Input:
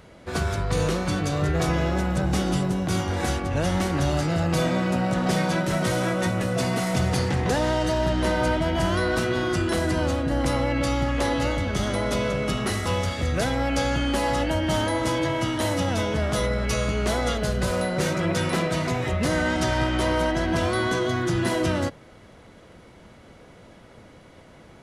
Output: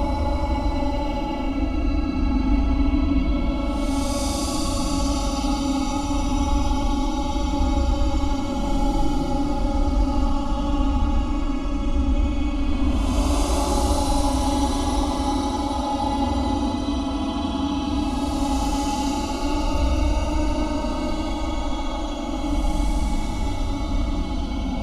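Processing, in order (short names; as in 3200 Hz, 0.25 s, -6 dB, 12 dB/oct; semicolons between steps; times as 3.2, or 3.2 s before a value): octaver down 2 oct, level +2 dB; Paulstretch 25×, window 0.05 s, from 10.67; fixed phaser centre 480 Hz, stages 6; gain +2 dB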